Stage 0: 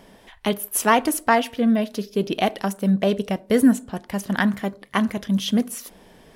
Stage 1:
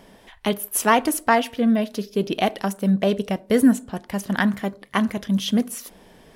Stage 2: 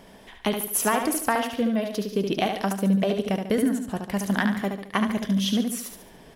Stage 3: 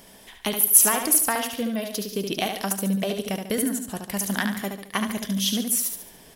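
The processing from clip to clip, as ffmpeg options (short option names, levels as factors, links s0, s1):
-af anull
-filter_complex "[0:a]acompressor=threshold=0.1:ratio=6,asplit=2[s0][s1];[s1]aecho=0:1:72|144|216|288|360:0.501|0.21|0.0884|0.0371|0.0156[s2];[s0][s2]amix=inputs=2:normalize=0"
-af "crystalizer=i=3.5:c=0,volume=0.668"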